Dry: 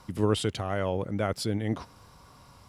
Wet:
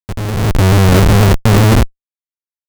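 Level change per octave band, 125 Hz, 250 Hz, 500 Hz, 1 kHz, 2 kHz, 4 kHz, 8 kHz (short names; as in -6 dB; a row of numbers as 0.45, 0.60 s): +23.0, +17.0, +13.0, +17.0, +19.5, +15.0, +18.0 dB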